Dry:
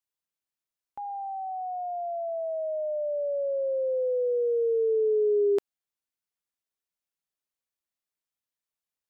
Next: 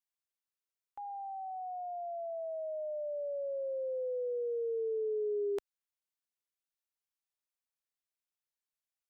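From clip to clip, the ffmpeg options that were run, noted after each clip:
ffmpeg -i in.wav -af "equalizer=frequency=170:width_type=o:width=2.4:gain=-11.5,volume=-5dB" out.wav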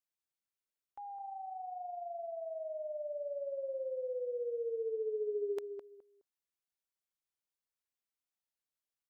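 ffmpeg -i in.wav -filter_complex "[0:a]asplit=2[link_01][link_02];[link_02]adelay=209,lowpass=frequency=830:poles=1,volume=-6.5dB,asplit=2[link_03][link_04];[link_04]adelay=209,lowpass=frequency=830:poles=1,volume=0.26,asplit=2[link_05][link_06];[link_06]adelay=209,lowpass=frequency=830:poles=1,volume=0.26[link_07];[link_01][link_03][link_05][link_07]amix=inputs=4:normalize=0,volume=-3dB" out.wav

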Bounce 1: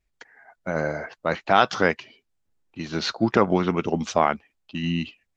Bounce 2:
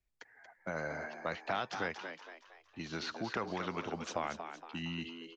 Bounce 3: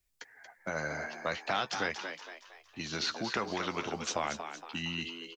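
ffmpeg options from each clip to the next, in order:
ffmpeg -i in.wav -filter_complex "[0:a]acrossover=split=100|710|1900[link_01][link_02][link_03][link_04];[link_01]acompressor=threshold=-48dB:ratio=4[link_05];[link_02]acompressor=threshold=-33dB:ratio=4[link_06];[link_03]acompressor=threshold=-31dB:ratio=4[link_07];[link_04]acompressor=threshold=-35dB:ratio=4[link_08];[link_05][link_06][link_07][link_08]amix=inputs=4:normalize=0,asplit=2[link_09][link_10];[link_10]asplit=5[link_11][link_12][link_13][link_14][link_15];[link_11]adelay=232,afreqshift=82,volume=-8.5dB[link_16];[link_12]adelay=464,afreqshift=164,volume=-15.8dB[link_17];[link_13]adelay=696,afreqshift=246,volume=-23.2dB[link_18];[link_14]adelay=928,afreqshift=328,volume=-30.5dB[link_19];[link_15]adelay=1160,afreqshift=410,volume=-37.8dB[link_20];[link_16][link_17][link_18][link_19][link_20]amix=inputs=5:normalize=0[link_21];[link_09][link_21]amix=inputs=2:normalize=0,volume=-8dB" out.wav
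ffmpeg -i in.wav -filter_complex "[0:a]highshelf=frequency=3400:gain=11,asplit=2[link_01][link_02];[link_02]adelay=14,volume=-10.5dB[link_03];[link_01][link_03]amix=inputs=2:normalize=0,volume=2dB" out.wav

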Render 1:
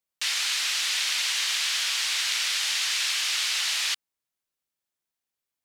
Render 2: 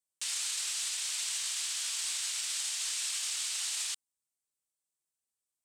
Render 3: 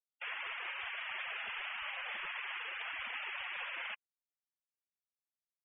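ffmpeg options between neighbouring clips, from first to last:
ffmpeg -i in.wav -af "equalizer=frequency=1900:width=1.2:gain=-4.5,alimiter=limit=-22.5dB:level=0:latency=1:release=27,equalizer=frequency=8300:width=1.6:gain=13.5,volume=-8dB" out.wav
ffmpeg -i in.wav -filter_complex "[0:a]asplit=2[link_01][link_02];[link_02]highpass=frequency=720:poles=1,volume=9dB,asoftclip=type=tanh:threshold=-22dB[link_03];[link_01][link_03]amix=inputs=2:normalize=0,lowpass=frequency=1700:poles=1,volume=-6dB,highpass=frequency=260:width_type=q:width=0.5412,highpass=frequency=260:width_type=q:width=1.307,lowpass=frequency=3100:width_type=q:width=0.5176,lowpass=frequency=3100:width_type=q:width=0.7071,lowpass=frequency=3100:width_type=q:width=1.932,afreqshift=-330,afftfilt=real='re*gte(hypot(re,im),0.00562)':imag='im*gte(hypot(re,im),0.00562)':win_size=1024:overlap=0.75,volume=5.5dB" out.wav

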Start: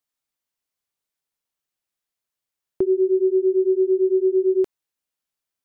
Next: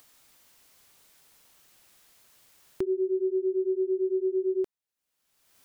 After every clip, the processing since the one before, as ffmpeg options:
ffmpeg -i in.wav -af "acompressor=mode=upward:threshold=-25dB:ratio=2.5,volume=-8.5dB" out.wav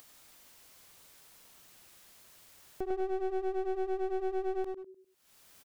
ffmpeg -i in.wav -filter_complex "[0:a]acompressor=mode=upward:threshold=-46dB:ratio=2.5,asplit=2[link_01][link_02];[link_02]adelay=100,lowpass=frequency=900:poles=1,volume=-4dB,asplit=2[link_03][link_04];[link_04]adelay=100,lowpass=frequency=900:poles=1,volume=0.39,asplit=2[link_05][link_06];[link_06]adelay=100,lowpass=frequency=900:poles=1,volume=0.39,asplit=2[link_07][link_08];[link_08]adelay=100,lowpass=frequency=900:poles=1,volume=0.39,asplit=2[link_09][link_10];[link_10]adelay=100,lowpass=frequency=900:poles=1,volume=0.39[link_11];[link_01][link_03][link_05][link_07][link_09][link_11]amix=inputs=6:normalize=0,aeval=exprs='clip(val(0),-1,0.0119)':channel_layout=same,volume=-4dB" out.wav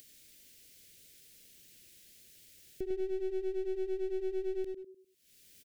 ffmpeg -i in.wav -af "asuperstop=centerf=990:order=4:qfactor=0.6" out.wav

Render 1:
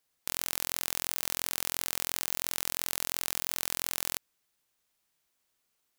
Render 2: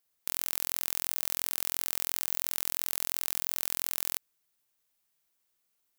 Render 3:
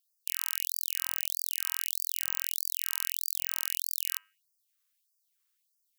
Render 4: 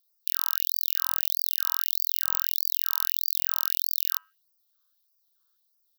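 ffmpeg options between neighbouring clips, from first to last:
ffmpeg -i in.wav -af "highshelf=frequency=11000:gain=8,volume=-4dB" out.wav
ffmpeg -i in.wav -af "bandreject=frequency=99.17:width_type=h:width=4,bandreject=frequency=198.34:width_type=h:width=4,bandreject=frequency=297.51:width_type=h:width=4,bandreject=frequency=396.68:width_type=h:width=4,bandreject=frequency=495.85:width_type=h:width=4,bandreject=frequency=595.02:width_type=h:width=4,bandreject=frequency=694.19:width_type=h:width=4,bandreject=frequency=793.36:width_type=h:width=4,bandreject=frequency=892.53:width_type=h:width=4,bandreject=frequency=991.7:width_type=h:width=4,bandreject=frequency=1090.87:width_type=h:width=4,bandreject=frequency=1190.04:width_type=h:width=4,bandreject=frequency=1289.21:width_type=h:width=4,bandreject=frequency=1388.38:width_type=h:width=4,bandreject=frequency=1487.55:width_type=h:width=4,bandreject=frequency=1586.72:width_type=h:width=4,bandreject=frequency=1685.89:width_type=h:width=4,bandreject=frequency=1785.06:width_type=h:width=4,bandreject=frequency=1884.23:width_type=h:width=4,bandreject=frequency=1983.4:width_type=h:width=4,bandreject=frequency=2082.57:width_type=h:width=4,bandreject=frequency=2181.74:width_type=h:width=4,bandreject=frequency=2280.91:width_type=h:width=4,bandreject=frequency=2380.08:width_type=h:width=4,bandreject=frequency=2479.25:width_type=h:width=4,bandreject=frequency=2578.42:width_type=h:width=4,bandreject=frequency=2677.59:width_type=h:width=4,bandreject=frequency=2776.76:width_type=h:width=4,bandreject=frequency=2875.93:width_type=h:width=4,bandreject=frequency=2975.1:width_type=h:width=4,bandreject=frequency=3074.27:width_type=h:width=4,afftfilt=real='re*gte(b*sr/1024,940*pow(4700/940,0.5+0.5*sin(2*PI*1.6*pts/sr)))':imag='im*gte(b*sr/1024,940*pow(4700/940,0.5+0.5*sin(2*PI*1.6*pts/sr)))':win_size=1024:overlap=0.75" out.wav
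ffmpeg -i in.wav -af "firequalizer=gain_entry='entry(280,0);entry(430,14);entry(750,12);entry(1400,12);entry(2200,-15);entry(3600,9);entry(5300,7);entry(8300,-7);entry(15000,10)':delay=0.05:min_phase=1,volume=-2.5dB" out.wav

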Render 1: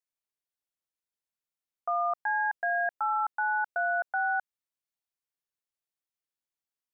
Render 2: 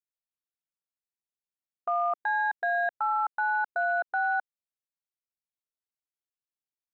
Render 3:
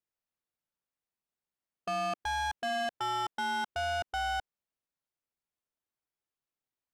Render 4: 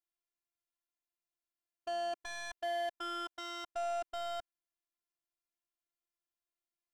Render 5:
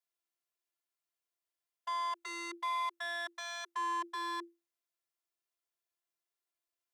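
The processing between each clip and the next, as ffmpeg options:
ffmpeg -i in.wav -af "afwtdn=0.00708,lowshelf=frequency=470:gain=5,alimiter=level_in=1.5dB:limit=-24dB:level=0:latency=1,volume=-1.5dB,volume=5dB" out.wav
ffmpeg -i in.wav -af "acontrast=53,highshelf=frequency=2600:gain=-10.5,asoftclip=type=tanh:threshold=-30.5dB" out.wav
ffmpeg -i in.wav -af "afftfilt=real='hypot(re,im)*cos(PI*b)':imag='0':win_size=512:overlap=0.75,volume=-2dB" out.wav
ffmpeg -i in.wav -af "afreqshift=340,volume=1dB" out.wav

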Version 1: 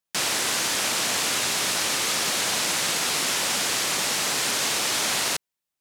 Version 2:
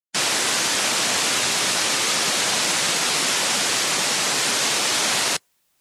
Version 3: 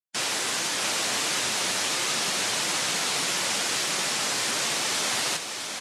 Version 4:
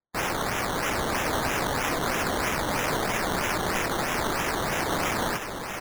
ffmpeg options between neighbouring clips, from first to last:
ffmpeg -i in.wav -af "afftdn=noise_reduction=22:noise_floor=-35,areverse,acompressor=mode=upward:threshold=-44dB:ratio=2.5,areverse,volume=4.5dB" out.wav
ffmpeg -i in.wav -filter_complex "[0:a]flanger=delay=5.5:depth=5.8:regen=-48:speed=1.5:shape=sinusoidal,asplit=2[link_01][link_02];[link_02]aecho=0:1:660:0.501[link_03];[link_01][link_03]amix=inputs=2:normalize=0,volume=-2.5dB" out.wav
ffmpeg -i in.wav -af "acrusher=samples=14:mix=1:aa=0.000001:lfo=1:lforange=8.4:lforate=3.1" out.wav

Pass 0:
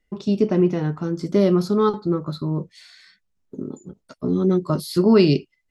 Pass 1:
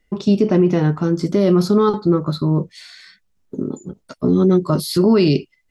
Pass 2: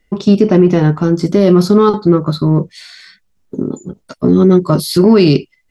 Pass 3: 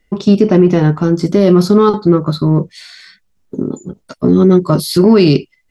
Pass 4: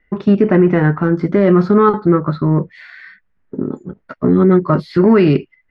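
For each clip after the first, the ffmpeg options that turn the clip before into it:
ffmpeg -i in.wav -af "alimiter=limit=-13.5dB:level=0:latency=1:release=41,volume=7dB" out.wav
ffmpeg -i in.wav -af "aeval=exprs='0.501*(cos(1*acos(clip(val(0)/0.501,-1,1)))-cos(1*PI/2))+0.00631*(cos(7*acos(clip(val(0)/0.501,-1,1)))-cos(7*PI/2))':channel_layout=same,volume=5.5dB" out.wav
ffmpeg -i in.wav -af anull out.wav
ffmpeg -i in.wav -af "lowpass=frequency=1800:width_type=q:width=2.7,volume=-2.5dB" out.wav

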